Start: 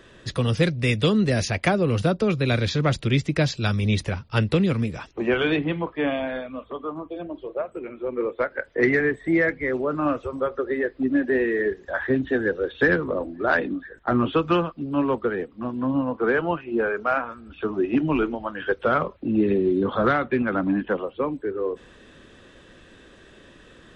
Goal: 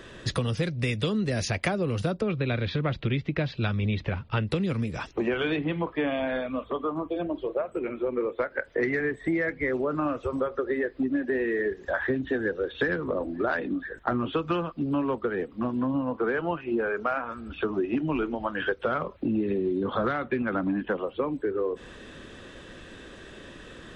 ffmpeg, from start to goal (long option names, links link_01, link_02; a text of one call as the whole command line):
ffmpeg -i in.wav -filter_complex "[0:a]asplit=3[link_01][link_02][link_03];[link_01]afade=type=out:start_time=2.2:duration=0.02[link_04];[link_02]lowpass=frequency=3600:width=0.5412,lowpass=frequency=3600:width=1.3066,afade=type=in:start_time=2.2:duration=0.02,afade=type=out:start_time=4.46:duration=0.02[link_05];[link_03]afade=type=in:start_time=4.46:duration=0.02[link_06];[link_04][link_05][link_06]amix=inputs=3:normalize=0,acompressor=threshold=-29dB:ratio=6,volume=4.5dB" out.wav